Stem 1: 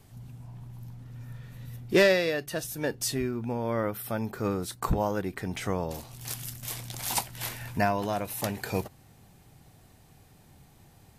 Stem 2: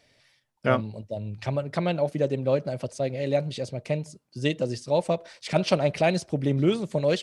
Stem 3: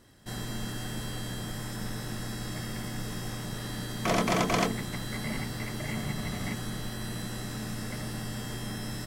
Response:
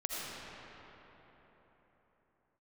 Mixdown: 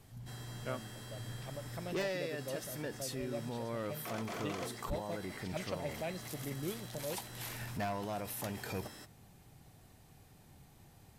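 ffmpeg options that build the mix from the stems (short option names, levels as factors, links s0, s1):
-filter_complex "[0:a]volume=0.668[s0];[1:a]volume=0.126,asplit=2[s1][s2];[2:a]highpass=320,volume=0.282[s3];[s2]apad=whole_len=493457[s4];[s0][s4]sidechaincompress=threshold=0.00708:ratio=8:attack=30:release=711[s5];[s5][s3]amix=inputs=2:normalize=0,asoftclip=type=hard:threshold=0.0447,alimiter=level_in=2.66:limit=0.0631:level=0:latency=1:release=40,volume=0.376,volume=1[s6];[s1][s6]amix=inputs=2:normalize=0"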